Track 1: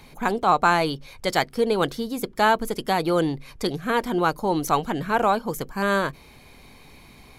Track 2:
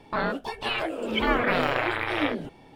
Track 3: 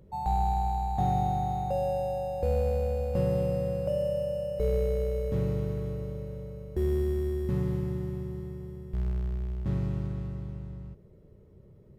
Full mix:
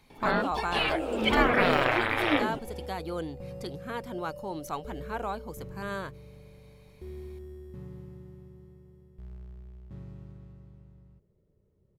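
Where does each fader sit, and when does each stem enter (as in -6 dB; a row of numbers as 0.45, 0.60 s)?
-13.5, +0.5, -14.5 dB; 0.00, 0.10, 0.25 s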